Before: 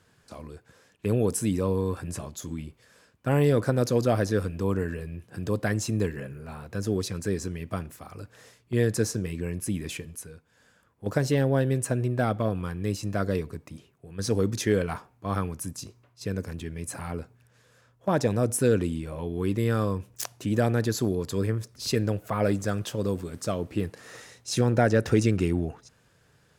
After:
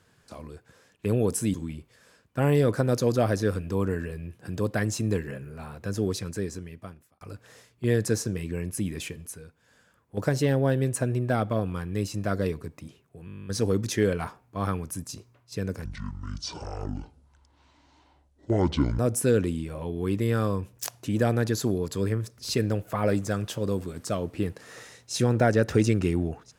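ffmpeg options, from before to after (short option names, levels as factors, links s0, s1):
-filter_complex "[0:a]asplit=15[s0][s1][s2][s3][s4][s5][s6][s7][s8][s9][s10][s11][s12][s13][s14];[s0]atrim=end=1.542[s15];[s1]atrim=start=2.428:end=8.1,asetpts=PTS-STARTPTS,afade=t=out:st=4.582:d=1.09[s16];[s2]atrim=start=8.1:end=14.172,asetpts=PTS-STARTPTS,afade=t=in:d=0.004:c=hsin[s17];[s3]atrim=start=14.148:end=14.172[s18];[s4]atrim=start=14.148:end=14.172[s19];[s5]atrim=start=14.148:end=14.172[s20];[s6]atrim=start=14.148:end=14.172[s21];[s7]atrim=start=14.148:end=14.172[s22];[s8]atrim=start=14.148:end=14.172[s23];[s9]atrim=start=14.148:end=14.172[s24];[s10]atrim=start=14.148:end=14.172[s25];[s11]atrim=start=14.148:end=14.172[s26];[s12]atrim=start=14.148:end=16.544[s27];[s13]atrim=start=16.54:end=18.36,asetpts=PTS-STARTPTS,asetrate=25578,aresample=44100[s28];[s14]atrim=start=18.356[s29];[s16][s17]concat=n=2:v=0:a=1[s30];[s15][s30]acrossfade=d=0.004:c1=hsin:c2=hsin[s31];[s31][s18]acrossfade=d=0.004:c1=hsin:c2=hsin[s32];[s32][s19]acrossfade=d=0.004:c1=hsin:c2=hsin[s33];[s33][s20]acrossfade=d=0.004:c1=hsin:c2=hsin[s34];[s34][s21]acrossfade=d=0.004:c1=hsin:c2=hsin[s35];[s35][s22]acrossfade=d=0.004:c1=hsin:c2=hsin[s36];[s36][s23]acrossfade=d=0.004:c1=hsin:c2=hsin[s37];[s37][s24]acrossfade=d=0.004:c1=hsin:c2=hsin[s38];[s38][s25]acrossfade=d=0.004:c1=hsin:c2=hsin[s39];[s39][s26]acrossfade=d=0.004:c1=hsin:c2=hsin[s40];[s40][s27]acrossfade=d=0.004:c1=hsin:c2=hsin[s41];[s41][s28]acrossfade=d=0.004:c1=hsin:c2=hsin[s42];[s42][s29]acrossfade=d=0.004:c1=hsin:c2=hsin"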